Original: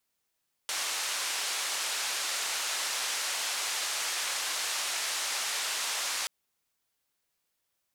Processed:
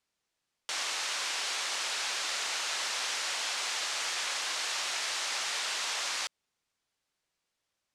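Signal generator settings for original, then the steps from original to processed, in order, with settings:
band-limited noise 730–7,800 Hz, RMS −32.5 dBFS 5.58 s
low-pass filter 7,100 Hz 12 dB per octave

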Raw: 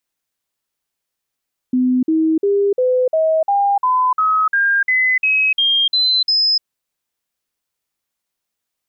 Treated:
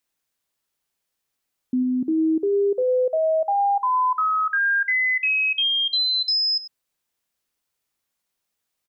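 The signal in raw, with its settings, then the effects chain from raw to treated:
stepped sweep 253 Hz up, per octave 3, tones 14, 0.30 s, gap 0.05 s −12 dBFS
brickwall limiter −17.5 dBFS
single-tap delay 97 ms −16 dB

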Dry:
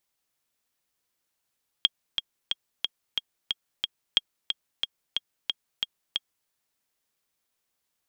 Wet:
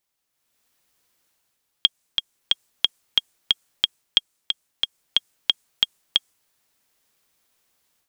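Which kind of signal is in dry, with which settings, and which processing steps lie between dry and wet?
click track 181 BPM, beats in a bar 7, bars 2, 3,260 Hz, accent 7 dB −6 dBFS
dynamic equaliser 8,200 Hz, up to +7 dB, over −52 dBFS, Q 0.99
automatic gain control gain up to 10.5 dB

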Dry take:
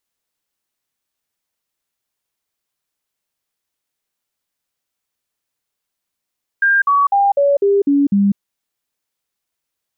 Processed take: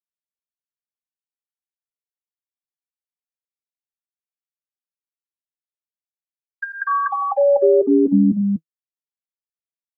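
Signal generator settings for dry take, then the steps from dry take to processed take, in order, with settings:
stepped sweep 1,600 Hz down, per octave 2, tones 7, 0.20 s, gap 0.05 s −10 dBFS
downward expander −13 dBFS
notch comb filter 160 Hz
loudspeakers that aren't time-aligned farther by 32 metres −11 dB, 83 metres −4 dB

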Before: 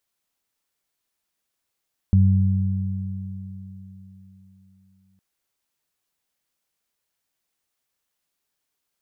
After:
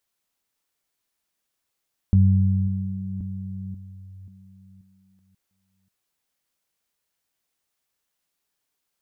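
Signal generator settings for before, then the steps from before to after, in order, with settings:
harmonic partials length 3.06 s, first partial 95.5 Hz, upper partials −6 dB, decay 3.56 s, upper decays 4.24 s, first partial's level −12 dB
delay that plays each chunk backwards 535 ms, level −12.5 dB

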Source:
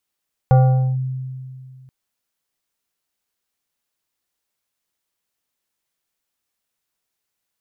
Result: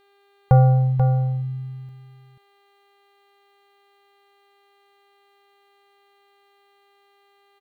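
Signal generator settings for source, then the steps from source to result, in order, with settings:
two-operator FM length 1.38 s, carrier 130 Hz, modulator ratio 4.98, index 0.59, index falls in 0.46 s linear, decay 2.33 s, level −7 dB
hum with harmonics 400 Hz, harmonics 11, −60 dBFS −5 dB per octave
single-tap delay 486 ms −7.5 dB

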